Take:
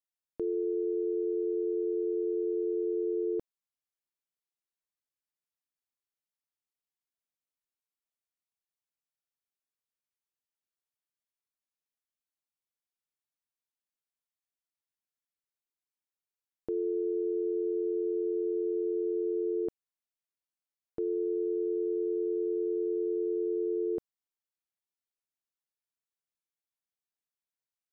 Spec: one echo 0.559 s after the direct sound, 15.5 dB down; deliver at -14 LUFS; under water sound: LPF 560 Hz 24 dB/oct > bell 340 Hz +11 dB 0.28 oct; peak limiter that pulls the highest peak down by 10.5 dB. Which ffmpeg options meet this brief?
-af "alimiter=level_in=11dB:limit=-24dB:level=0:latency=1,volume=-11dB,lowpass=f=560:w=0.5412,lowpass=f=560:w=1.3066,equalizer=f=340:t=o:w=0.28:g=11,aecho=1:1:559:0.168,volume=21dB"

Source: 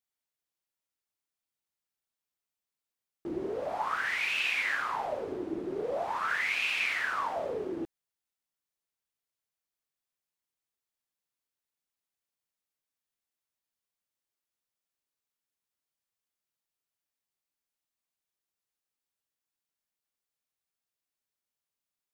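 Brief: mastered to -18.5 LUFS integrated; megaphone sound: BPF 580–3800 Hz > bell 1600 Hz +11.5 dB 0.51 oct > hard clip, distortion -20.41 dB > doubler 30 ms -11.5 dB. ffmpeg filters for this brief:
-filter_complex "[0:a]highpass=580,lowpass=3.8k,equalizer=f=1.6k:t=o:w=0.51:g=11.5,asoftclip=type=hard:threshold=-16.5dB,asplit=2[a][b];[b]adelay=30,volume=-11.5dB[c];[a][c]amix=inputs=2:normalize=0,volume=7dB"

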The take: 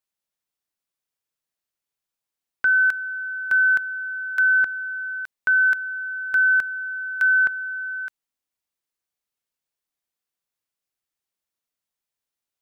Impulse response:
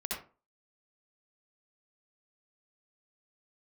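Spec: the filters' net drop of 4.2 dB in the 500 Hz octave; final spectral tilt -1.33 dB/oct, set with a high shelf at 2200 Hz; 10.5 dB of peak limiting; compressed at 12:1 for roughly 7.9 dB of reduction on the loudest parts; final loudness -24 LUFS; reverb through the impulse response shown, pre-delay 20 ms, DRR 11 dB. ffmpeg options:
-filter_complex "[0:a]equalizer=f=500:t=o:g=-5,highshelf=f=2.2k:g=-7,acompressor=threshold=-26dB:ratio=12,alimiter=level_in=3dB:limit=-24dB:level=0:latency=1,volume=-3dB,asplit=2[a][b];[1:a]atrim=start_sample=2205,adelay=20[c];[b][c]afir=irnorm=-1:irlink=0,volume=-14dB[d];[a][d]amix=inputs=2:normalize=0,volume=8dB"

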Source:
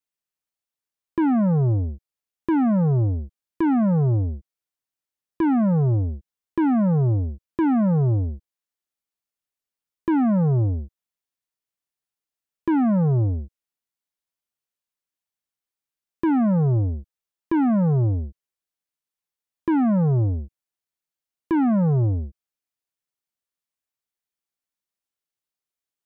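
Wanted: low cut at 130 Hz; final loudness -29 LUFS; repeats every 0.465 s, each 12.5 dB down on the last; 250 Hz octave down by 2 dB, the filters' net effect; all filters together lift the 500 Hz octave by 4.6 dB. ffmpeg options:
-af "highpass=130,equalizer=f=250:t=o:g=-4,equalizer=f=500:t=o:g=7.5,aecho=1:1:465|930|1395:0.237|0.0569|0.0137,volume=-5.5dB"

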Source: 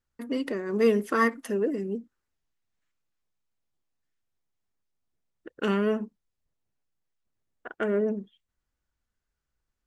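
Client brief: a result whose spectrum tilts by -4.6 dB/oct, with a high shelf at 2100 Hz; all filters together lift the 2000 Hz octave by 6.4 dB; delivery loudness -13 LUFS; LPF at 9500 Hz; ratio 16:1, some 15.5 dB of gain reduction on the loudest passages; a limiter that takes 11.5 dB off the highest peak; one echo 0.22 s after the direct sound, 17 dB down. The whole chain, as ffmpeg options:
-af "lowpass=9.5k,equalizer=f=2k:t=o:g=4.5,highshelf=f=2.1k:g=6,acompressor=threshold=-31dB:ratio=16,alimiter=level_in=4.5dB:limit=-24dB:level=0:latency=1,volume=-4.5dB,aecho=1:1:220:0.141,volume=26dB"

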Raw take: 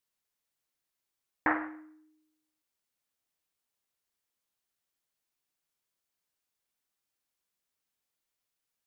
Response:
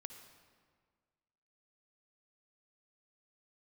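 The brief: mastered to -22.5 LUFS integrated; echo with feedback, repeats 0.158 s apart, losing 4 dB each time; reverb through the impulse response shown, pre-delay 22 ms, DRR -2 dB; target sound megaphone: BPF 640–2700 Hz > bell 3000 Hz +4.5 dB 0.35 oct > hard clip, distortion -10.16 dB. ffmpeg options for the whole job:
-filter_complex "[0:a]aecho=1:1:158|316|474|632|790|948|1106|1264|1422:0.631|0.398|0.25|0.158|0.0994|0.0626|0.0394|0.0249|0.0157,asplit=2[a][b];[1:a]atrim=start_sample=2205,adelay=22[c];[b][c]afir=irnorm=-1:irlink=0,volume=7dB[d];[a][d]amix=inputs=2:normalize=0,highpass=640,lowpass=2.7k,equalizer=f=3k:t=o:w=0.35:g=4.5,asoftclip=type=hard:threshold=-23dB,volume=10.5dB"

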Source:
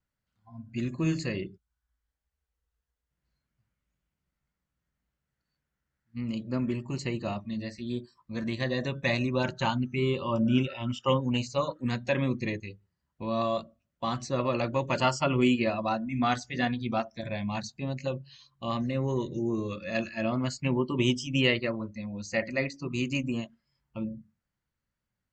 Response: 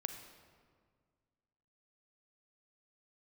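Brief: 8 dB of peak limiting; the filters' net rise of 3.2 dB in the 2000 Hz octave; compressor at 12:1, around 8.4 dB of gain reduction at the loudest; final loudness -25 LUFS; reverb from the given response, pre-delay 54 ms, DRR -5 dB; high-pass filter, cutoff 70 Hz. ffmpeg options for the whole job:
-filter_complex "[0:a]highpass=70,equalizer=f=2k:t=o:g=4,acompressor=threshold=-27dB:ratio=12,alimiter=limit=-23dB:level=0:latency=1,asplit=2[a][b];[1:a]atrim=start_sample=2205,adelay=54[c];[b][c]afir=irnorm=-1:irlink=0,volume=5.5dB[d];[a][d]amix=inputs=2:normalize=0,volume=4dB"

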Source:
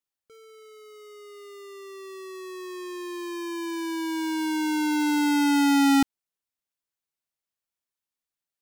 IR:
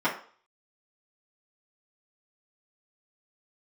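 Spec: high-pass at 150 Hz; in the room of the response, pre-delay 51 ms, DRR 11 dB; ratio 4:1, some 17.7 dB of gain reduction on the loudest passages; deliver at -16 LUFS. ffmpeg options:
-filter_complex "[0:a]highpass=150,acompressor=threshold=-39dB:ratio=4,asplit=2[a][b];[1:a]atrim=start_sample=2205,adelay=51[c];[b][c]afir=irnorm=-1:irlink=0,volume=-24.5dB[d];[a][d]amix=inputs=2:normalize=0,volume=24dB"

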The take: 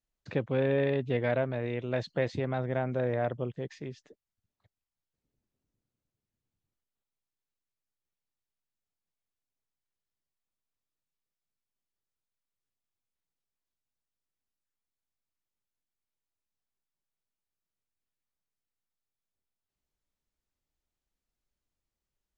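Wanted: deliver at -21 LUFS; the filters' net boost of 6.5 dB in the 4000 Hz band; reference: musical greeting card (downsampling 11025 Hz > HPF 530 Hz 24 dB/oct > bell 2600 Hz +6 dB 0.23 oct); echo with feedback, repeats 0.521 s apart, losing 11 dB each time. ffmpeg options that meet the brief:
-af "equalizer=f=4k:t=o:g=7,aecho=1:1:521|1042|1563:0.282|0.0789|0.0221,aresample=11025,aresample=44100,highpass=f=530:w=0.5412,highpass=f=530:w=1.3066,equalizer=f=2.6k:t=o:w=0.23:g=6,volume=13.5dB"

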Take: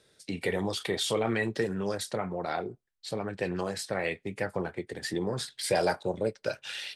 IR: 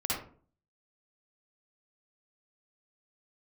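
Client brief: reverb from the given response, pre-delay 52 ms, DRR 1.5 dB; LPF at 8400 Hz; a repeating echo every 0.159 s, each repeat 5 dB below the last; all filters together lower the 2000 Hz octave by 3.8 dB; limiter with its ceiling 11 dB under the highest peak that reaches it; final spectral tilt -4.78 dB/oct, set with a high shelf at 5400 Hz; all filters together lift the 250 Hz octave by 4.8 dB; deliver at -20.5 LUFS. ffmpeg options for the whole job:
-filter_complex "[0:a]lowpass=8.4k,equalizer=f=250:t=o:g=7,equalizer=f=2k:t=o:g=-5.5,highshelf=f=5.4k:g=6.5,alimiter=limit=-23.5dB:level=0:latency=1,aecho=1:1:159|318|477|636|795|954|1113:0.562|0.315|0.176|0.0988|0.0553|0.031|0.0173,asplit=2[a][b];[1:a]atrim=start_sample=2205,adelay=52[c];[b][c]afir=irnorm=-1:irlink=0,volume=-8dB[d];[a][d]amix=inputs=2:normalize=0,volume=9.5dB"

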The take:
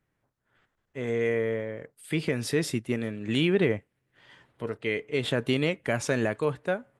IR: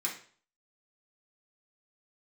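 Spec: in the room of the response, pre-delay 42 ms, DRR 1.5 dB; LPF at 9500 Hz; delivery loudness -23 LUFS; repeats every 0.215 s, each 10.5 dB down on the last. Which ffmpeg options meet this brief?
-filter_complex "[0:a]lowpass=9.5k,aecho=1:1:215|430|645:0.299|0.0896|0.0269,asplit=2[a][b];[1:a]atrim=start_sample=2205,adelay=42[c];[b][c]afir=irnorm=-1:irlink=0,volume=-5.5dB[d];[a][d]amix=inputs=2:normalize=0,volume=3.5dB"

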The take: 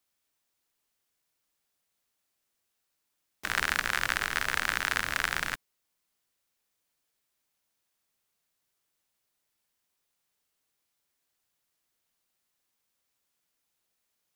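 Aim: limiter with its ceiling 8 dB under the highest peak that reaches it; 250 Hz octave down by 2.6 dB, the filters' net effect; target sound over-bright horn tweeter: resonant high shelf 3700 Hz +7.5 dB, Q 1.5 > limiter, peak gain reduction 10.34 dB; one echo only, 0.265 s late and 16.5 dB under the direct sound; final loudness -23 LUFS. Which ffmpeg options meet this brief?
-af "equalizer=f=250:t=o:g=-3.5,alimiter=limit=-14.5dB:level=0:latency=1,highshelf=f=3.7k:t=q:w=1.5:g=7.5,aecho=1:1:265:0.15,volume=17.5dB,alimiter=limit=-2dB:level=0:latency=1"

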